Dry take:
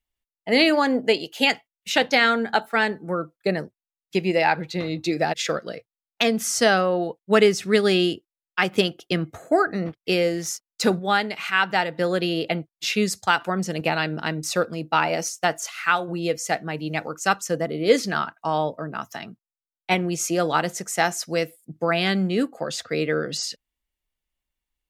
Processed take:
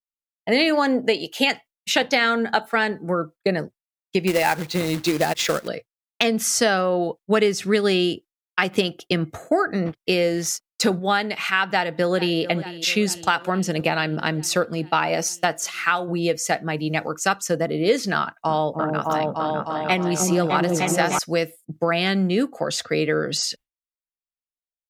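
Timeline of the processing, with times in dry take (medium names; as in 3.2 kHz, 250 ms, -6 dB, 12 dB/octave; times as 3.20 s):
4.27–5.68 s: companded quantiser 4-bit
11.67–12.40 s: echo throw 440 ms, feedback 70%, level -17 dB
18.19–21.19 s: delay with an opening low-pass 303 ms, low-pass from 400 Hz, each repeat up 2 oct, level 0 dB
whole clip: expander -40 dBFS; compression 2.5:1, threshold -22 dBFS; trim +4.5 dB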